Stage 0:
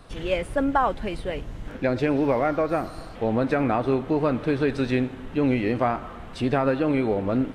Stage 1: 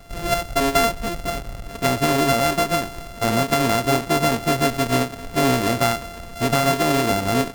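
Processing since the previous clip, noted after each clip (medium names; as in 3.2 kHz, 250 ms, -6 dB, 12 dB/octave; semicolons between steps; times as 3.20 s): sorted samples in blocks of 64 samples; endings held to a fixed fall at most 230 dB/s; trim +3.5 dB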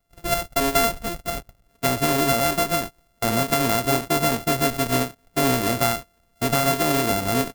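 gate -26 dBFS, range -26 dB; treble shelf 10 kHz +10 dB; trim -2.5 dB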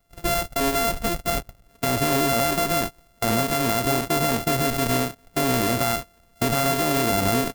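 loudness maximiser +13 dB; trim -7.5 dB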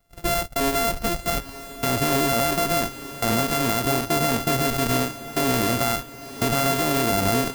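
echo that smears into a reverb 924 ms, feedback 43%, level -14.5 dB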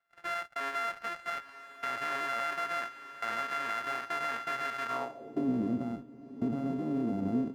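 band-pass sweep 1.6 kHz -> 240 Hz, 4.84–5.45 s; trim -2.5 dB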